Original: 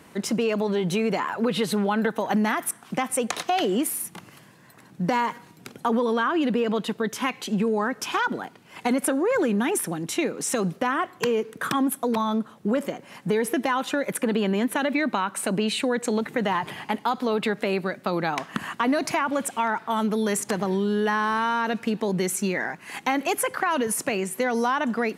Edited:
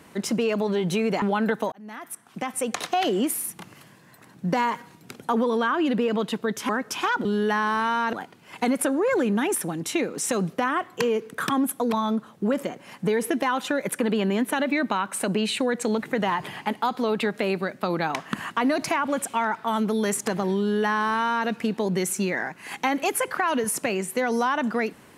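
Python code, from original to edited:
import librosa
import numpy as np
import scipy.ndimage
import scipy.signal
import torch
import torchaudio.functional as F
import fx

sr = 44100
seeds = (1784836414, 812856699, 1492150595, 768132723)

y = fx.edit(x, sr, fx.cut(start_s=1.22, length_s=0.56),
    fx.fade_in_span(start_s=2.28, length_s=1.17),
    fx.cut(start_s=7.25, length_s=0.55),
    fx.duplicate(start_s=20.82, length_s=0.88, to_s=8.36), tone=tone)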